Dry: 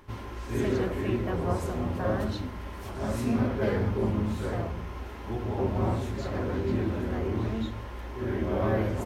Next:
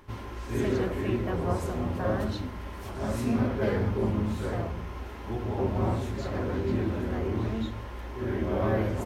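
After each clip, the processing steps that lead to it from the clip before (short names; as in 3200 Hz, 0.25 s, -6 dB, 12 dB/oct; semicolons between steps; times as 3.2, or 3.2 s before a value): nothing audible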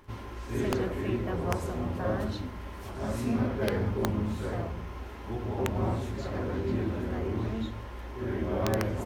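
wrapped overs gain 15.5 dB; crackle 120/s -52 dBFS; gain -2 dB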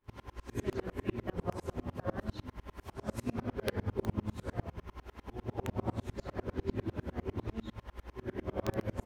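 dB-ramp tremolo swelling 10 Hz, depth 33 dB; gain +1.5 dB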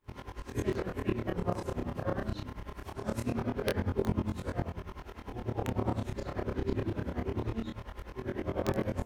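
chorus 0.23 Hz, depth 7.4 ms; gain +7 dB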